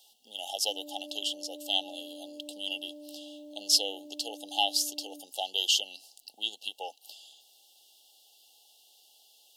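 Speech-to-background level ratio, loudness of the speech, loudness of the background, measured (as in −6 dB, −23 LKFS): 17.0 dB, −30.5 LKFS, −47.5 LKFS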